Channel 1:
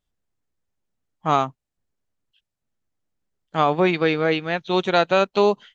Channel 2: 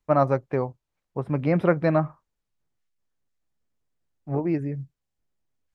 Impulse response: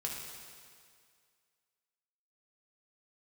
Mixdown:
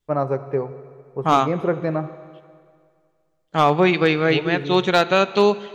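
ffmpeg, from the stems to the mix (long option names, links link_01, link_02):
-filter_complex "[0:a]adynamicequalizer=threshold=0.0251:dfrequency=670:dqfactor=1.2:tfrequency=670:tqfactor=1.2:attack=5:release=100:ratio=0.375:range=2.5:mode=cutabove:tftype=bell,volume=2dB,asplit=2[link_01][link_02];[link_02]volume=-13dB[link_03];[1:a]equalizer=frequency=410:width_type=o:width=0.51:gain=8.5,volume=-6dB,asplit=2[link_04][link_05];[link_05]volume=-8.5dB[link_06];[2:a]atrim=start_sample=2205[link_07];[link_03][link_06]amix=inputs=2:normalize=0[link_08];[link_08][link_07]afir=irnorm=-1:irlink=0[link_09];[link_01][link_04][link_09]amix=inputs=3:normalize=0,asoftclip=type=hard:threshold=-6dB"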